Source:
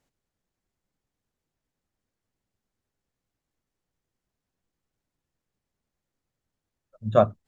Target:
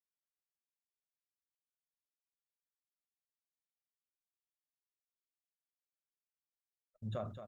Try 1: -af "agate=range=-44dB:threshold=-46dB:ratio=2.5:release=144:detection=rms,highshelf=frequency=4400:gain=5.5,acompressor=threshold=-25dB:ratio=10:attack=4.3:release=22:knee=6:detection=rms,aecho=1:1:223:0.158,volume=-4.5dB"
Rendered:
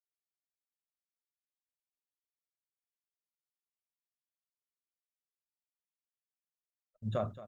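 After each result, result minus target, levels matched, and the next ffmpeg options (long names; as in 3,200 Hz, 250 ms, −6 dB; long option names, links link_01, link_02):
downward compressor: peak gain reduction −7 dB; echo-to-direct −6 dB
-af "agate=range=-44dB:threshold=-46dB:ratio=2.5:release=144:detection=rms,highshelf=frequency=4400:gain=5.5,acompressor=threshold=-33dB:ratio=10:attack=4.3:release=22:knee=6:detection=rms,aecho=1:1:223:0.158,volume=-4.5dB"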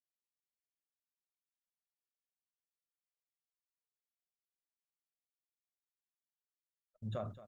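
echo-to-direct −6 dB
-af "agate=range=-44dB:threshold=-46dB:ratio=2.5:release=144:detection=rms,highshelf=frequency=4400:gain=5.5,acompressor=threshold=-33dB:ratio=10:attack=4.3:release=22:knee=6:detection=rms,aecho=1:1:223:0.316,volume=-4.5dB"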